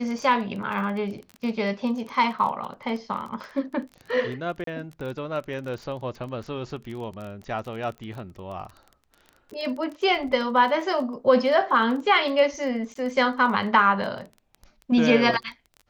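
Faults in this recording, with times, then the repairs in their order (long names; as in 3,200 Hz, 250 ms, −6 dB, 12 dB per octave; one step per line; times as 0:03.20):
surface crackle 20 per second −33 dBFS
0:04.64–0:04.67: drop-out 33 ms
0:12.94–0:12.95: drop-out 14 ms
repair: click removal
repair the gap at 0:04.64, 33 ms
repair the gap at 0:12.94, 14 ms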